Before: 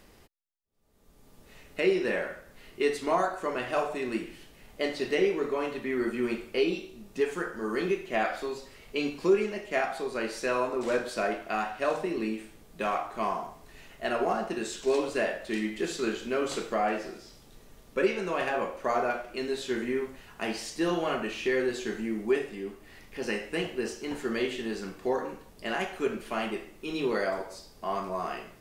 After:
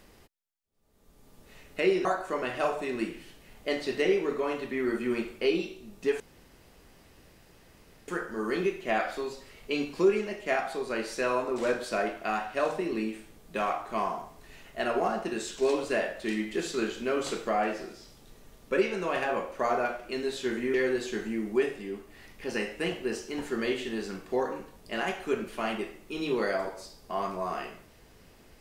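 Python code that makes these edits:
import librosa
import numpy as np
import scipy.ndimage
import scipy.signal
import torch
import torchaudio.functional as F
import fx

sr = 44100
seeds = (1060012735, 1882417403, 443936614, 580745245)

y = fx.edit(x, sr, fx.cut(start_s=2.05, length_s=1.13),
    fx.insert_room_tone(at_s=7.33, length_s=1.88),
    fx.cut(start_s=19.99, length_s=1.48), tone=tone)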